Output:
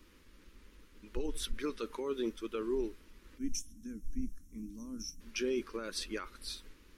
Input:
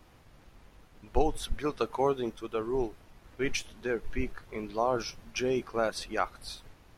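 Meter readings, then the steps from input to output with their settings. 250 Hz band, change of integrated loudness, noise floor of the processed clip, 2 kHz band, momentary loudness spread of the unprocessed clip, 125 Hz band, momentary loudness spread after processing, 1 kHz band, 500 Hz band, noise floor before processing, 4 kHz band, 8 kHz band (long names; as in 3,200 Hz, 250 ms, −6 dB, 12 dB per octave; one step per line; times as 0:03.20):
−3.5 dB, −7.0 dB, −61 dBFS, −9.0 dB, 8 LU, −11.0 dB, 11 LU, −16.5 dB, −8.0 dB, −58 dBFS, −2.5 dB, −0.5 dB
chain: gain on a spectral selection 0:03.38–0:05.21, 320–5,300 Hz −24 dB
brickwall limiter −24 dBFS, peak gain reduction 11.5 dB
phaser with its sweep stopped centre 300 Hz, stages 4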